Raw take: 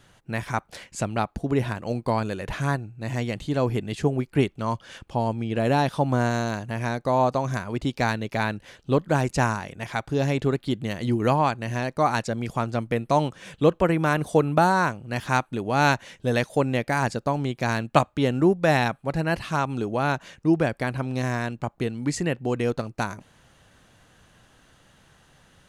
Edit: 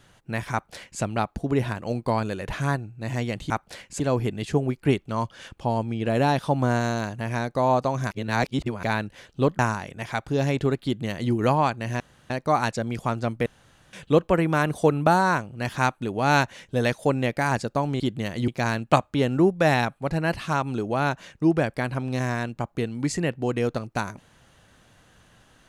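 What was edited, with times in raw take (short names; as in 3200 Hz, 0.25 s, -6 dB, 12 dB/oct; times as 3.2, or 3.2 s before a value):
0.52–1.02 copy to 3.5
7.61–8.33 reverse
9.09–9.4 cut
10.65–11.13 copy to 17.51
11.81 insert room tone 0.30 s
12.97–13.44 room tone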